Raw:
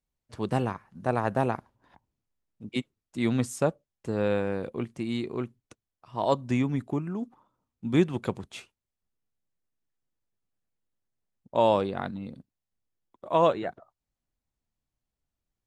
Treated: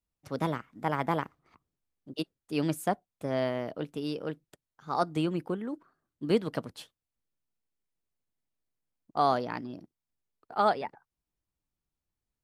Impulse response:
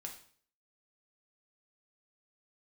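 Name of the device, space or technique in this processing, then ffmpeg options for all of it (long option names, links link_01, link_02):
nightcore: -af "asetrate=55566,aresample=44100,volume=-3dB"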